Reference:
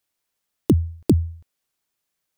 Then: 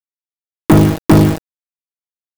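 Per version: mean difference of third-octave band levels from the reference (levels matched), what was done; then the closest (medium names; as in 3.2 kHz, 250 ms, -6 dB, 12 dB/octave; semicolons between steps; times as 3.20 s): 23.0 dB: on a send: flutter echo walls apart 3.3 m, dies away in 0.5 s; on the sum: small samples zeroed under -33.5 dBFS; waveshaping leveller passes 5; comb 6.3 ms, depth 42%; trim -1 dB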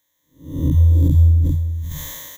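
11.0 dB: spectral blur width 304 ms; rippled EQ curve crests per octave 1.1, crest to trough 17 dB; delay 397 ms -18 dB; decay stretcher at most 26 dB/s; trim +8.5 dB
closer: second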